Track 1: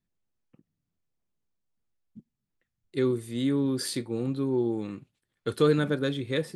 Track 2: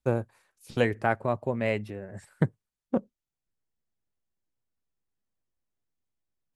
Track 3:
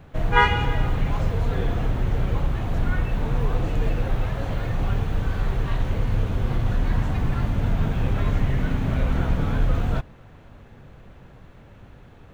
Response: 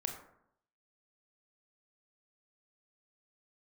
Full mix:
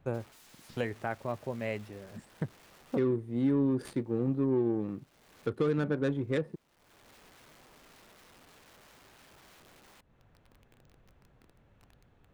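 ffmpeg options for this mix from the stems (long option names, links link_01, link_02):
-filter_complex "[0:a]highshelf=frequency=7100:width_type=q:width=1.5:gain=12,bandreject=frequency=7800:width=6.8,adynamicsmooth=sensitivity=2:basefreq=870,volume=0dB,asplit=2[link_01][link_02];[1:a]volume=-7.5dB[link_03];[2:a]acompressor=threshold=-28dB:ratio=16,aeval=exprs='(mod(70.8*val(0)+1,2)-1)/70.8':channel_layout=same,volume=-16.5dB[link_04];[link_02]apad=whole_len=543835[link_05];[link_04][link_05]sidechaincompress=threshold=-45dB:ratio=8:attack=5.7:release=435[link_06];[link_01][link_03][link_06]amix=inputs=3:normalize=0,alimiter=limit=-20dB:level=0:latency=1:release=157"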